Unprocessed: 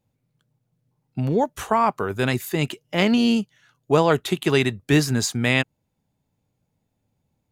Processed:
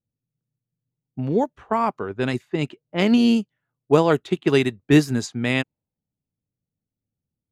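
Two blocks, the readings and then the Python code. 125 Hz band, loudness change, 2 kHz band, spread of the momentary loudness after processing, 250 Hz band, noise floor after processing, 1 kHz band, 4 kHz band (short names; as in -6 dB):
-1.5 dB, 0.0 dB, -3.0 dB, 10 LU, +2.0 dB, under -85 dBFS, -2.5 dB, -3.5 dB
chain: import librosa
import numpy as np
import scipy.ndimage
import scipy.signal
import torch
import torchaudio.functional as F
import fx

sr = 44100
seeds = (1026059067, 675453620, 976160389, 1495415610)

y = fx.env_lowpass(x, sr, base_hz=440.0, full_db=-16.0)
y = fx.dynamic_eq(y, sr, hz=300.0, q=0.99, threshold_db=-33.0, ratio=4.0, max_db=5)
y = fx.upward_expand(y, sr, threshold_db=-35.0, expansion=1.5)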